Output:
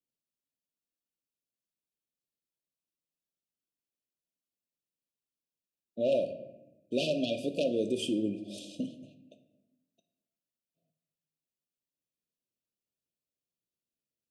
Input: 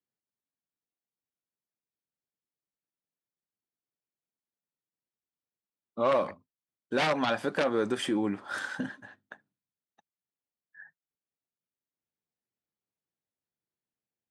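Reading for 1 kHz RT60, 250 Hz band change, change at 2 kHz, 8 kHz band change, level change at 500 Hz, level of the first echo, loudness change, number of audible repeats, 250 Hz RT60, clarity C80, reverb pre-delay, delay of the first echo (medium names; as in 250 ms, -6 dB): 0.85 s, -1.0 dB, -13.0 dB, -1.5 dB, -1.0 dB, no echo, -2.5 dB, no echo, 1.4 s, 13.5 dB, 3 ms, no echo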